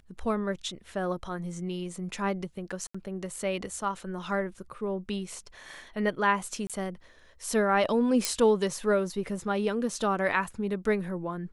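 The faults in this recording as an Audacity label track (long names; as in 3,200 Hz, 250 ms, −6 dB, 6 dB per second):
2.870000	2.940000	drop-out 75 ms
6.670000	6.700000	drop-out 27 ms
8.250000	8.250000	click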